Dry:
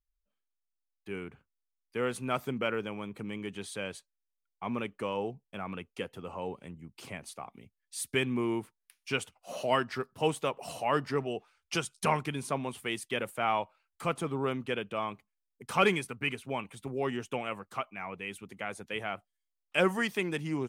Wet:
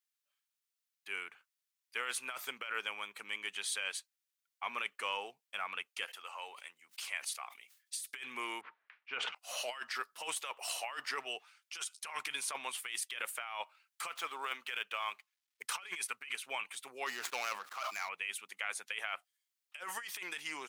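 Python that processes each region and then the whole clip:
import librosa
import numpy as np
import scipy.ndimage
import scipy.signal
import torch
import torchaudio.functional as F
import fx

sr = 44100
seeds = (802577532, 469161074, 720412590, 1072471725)

y = fx.chain(x, sr, fx.highpass(hz=810.0, slope=6),
    fx.sustainer(db_per_s=120.0), at=(6.05, 8.03))
y = fx.chain(y, sr, fx.env_lowpass(base_hz=1800.0, full_db=-32.5),
    fx.spacing_loss(db_at_10k=45),
    fx.sustainer(db_per_s=48.0), at=(8.61, 9.35))
y = fx.chain(y, sr, fx.median_filter(points=5),
    fx.highpass(hz=410.0, slope=6),
    fx.band_squash(depth_pct=40), at=(14.07, 15.63))
y = fx.chain(y, sr, fx.median_filter(points=15),
    fx.sustainer(db_per_s=62.0), at=(17.06, 18.09))
y = scipy.signal.sosfilt(scipy.signal.butter(2, 1500.0, 'highpass', fs=sr, output='sos'), y)
y = fx.over_compress(y, sr, threshold_db=-43.0, ratio=-1.0)
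y = F.gain(torch.from_numpy(y), 3.5).numpy()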